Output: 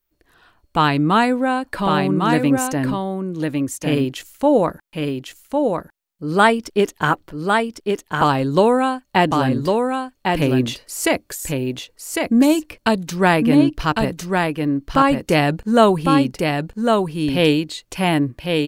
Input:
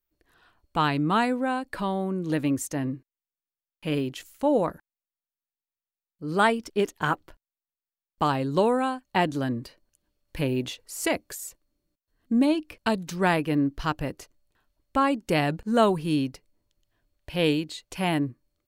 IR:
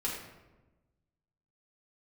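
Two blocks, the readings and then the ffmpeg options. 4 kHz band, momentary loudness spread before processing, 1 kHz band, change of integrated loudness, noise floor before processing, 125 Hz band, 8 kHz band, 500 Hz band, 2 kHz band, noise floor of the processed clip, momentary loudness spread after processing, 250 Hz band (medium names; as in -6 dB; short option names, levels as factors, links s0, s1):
+9.0 dB, 11 LU, +9.0 dB, +7.5 dB, under -85 dBFS, +9.0 dB, +9.0 dB, +9.0 dB, +9.0 dB, -66 dBFS, 9 LU, +9.0 dB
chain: -af "aecho=1:1:1103:0.631,volume=2.37"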